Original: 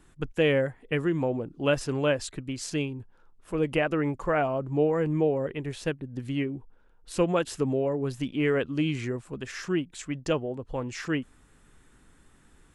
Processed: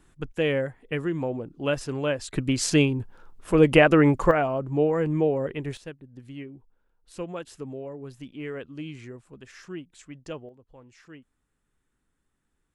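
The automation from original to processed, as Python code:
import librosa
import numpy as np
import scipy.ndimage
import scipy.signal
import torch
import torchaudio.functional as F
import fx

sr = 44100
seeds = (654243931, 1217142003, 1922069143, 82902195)

y = fx.gain(x, sr, db=fx.steps((0.0, -1.5), (2.33, 9.5), (4.31, 1.5), (5.77, -10.0), (10.49, -18.5)))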